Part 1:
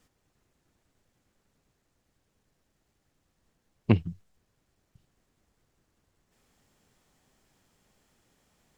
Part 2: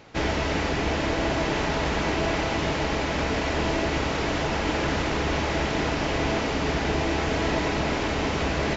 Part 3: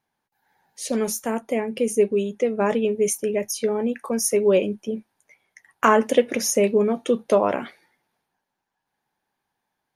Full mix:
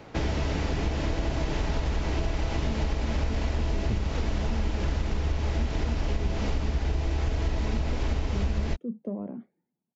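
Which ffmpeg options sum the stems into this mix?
ffmpeg -i stem1.wav -i stem2.wav -i stem3.wav -filter_complex "[0:a]volume=-5dB[link_01];[1:a]asubboost=boost=5:cutoff=66,volume=1dB[link_02];[2:a]acontrast=55,bandpass=frequency=200:width_type=q:width=2.4:csg=0,adelay=1750,volume=-10.5dB[link_03];[link_01][link_02][link_03]amix=inputs=3:normalize=0,acrossover=split=180|3000[link_04][link_05][link_06];[link_05]acompressor=threshold=-37dB:ratio=2[link_07];[link_04][link_07][link_06]amix=inputs=3:normalize=0,tiltshelf=frequency=1300:gain=4,acompressor=threshold=-23dB:ratio=6" out.wav

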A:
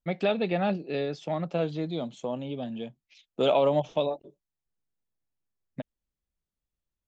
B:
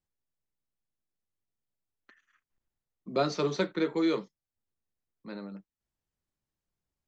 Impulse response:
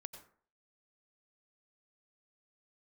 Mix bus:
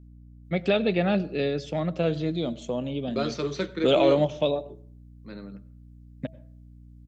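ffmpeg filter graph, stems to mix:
-filter_complex "[0:a]bandreject=frequency=324.4:width_type=h:width=4,bandreject=frequency=648.8:width_type=h:width=4,adelay=450,volume=2.5dB,asplit=2[link_01][link_02];[link_02]volume=-6dB[link_03];[1:a]acontrast=39,aeval=exprs='val(0)+0.00794*(sin(2*PI*60*n/s)+sin(2*PI*2*60*n/s)/2+sin(2*PI*3*60*n/s)/3+sin(2*PI*4*60*n/s)/4+sin(2*PI*5*60*n/s)/5)':channel_layout=same,volume=-7.5dB,asplit=2[link_04][link_05];[link_05]volume=-4.5dB[link_06];[2:a]atrim=start_sample=2205[link_07];[link_03][link_06]amix=inputs=2:normalize=0[link_08];[link_08][link_07]afir=irnorm=-1:irlink=0[link_09];[link_01][link_04][link_09]amix=inputs=3:normalize=0,equalizer=frequency=880:width=1.8:gain=-7.5"

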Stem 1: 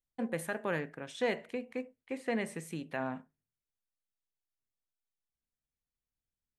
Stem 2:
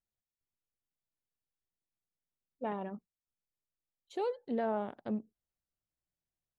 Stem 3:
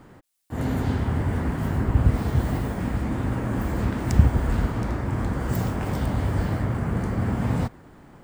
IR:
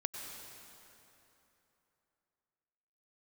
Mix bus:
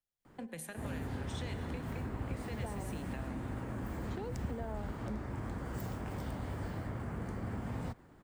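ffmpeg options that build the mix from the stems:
-filter_complex "[0:a]acrossover=split=130|3000[link_01][link_02][link_03];[link_02]acompressor=threshold=-44dB:ratio=6[link_04];[link_01][link_04][link_03]amix=inputs=3:normalize=0,adelay=200,volume=-3.5dB,asplit=2[link_05][link_06];[link_06]volume=-3dB[link_07];[1:a]volume=-3dB[link_08];[2:a]adelay=250,volume=-11dB[link_09];[3:a]atrim=start_sample=2205[link_10];[link_07][link_10]afir=irnorm=-1:irlink=0[link_11];[link_05][link_08][link_09][link_11]amix=inputs=4:normalize=0,acrossover=split=97|220[link_12][link_13][link_14];[link_12]acompressor=threshold=-42dB:ratio=4[link_15];[link_13]acompressor=threshold=-45dB:ratio=4[link_16];[link_14]acompressor=threshold=-41dB:ratio=4[link_17];[link_15][link_16][link_17]amix=inputs=3:normalize=0"

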